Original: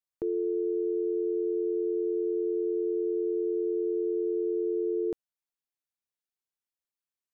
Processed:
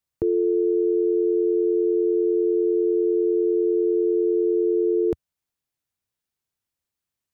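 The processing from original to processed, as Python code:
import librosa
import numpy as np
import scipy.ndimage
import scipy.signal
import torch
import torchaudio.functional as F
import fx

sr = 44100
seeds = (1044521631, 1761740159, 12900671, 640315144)

y = fx.peak_eq(x, sr, hz=84.0, db=12.5, octaves=2.1)
y = F.gain(torch.from_numpy(y), 6.5).numpy()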